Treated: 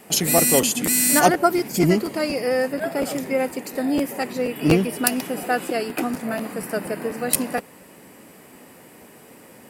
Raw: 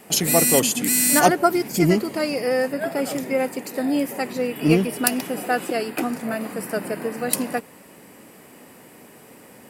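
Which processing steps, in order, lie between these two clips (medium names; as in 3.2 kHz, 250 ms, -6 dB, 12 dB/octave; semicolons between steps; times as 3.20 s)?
crackling interface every 0.24 s, samples 512, repeat, from 0.37 s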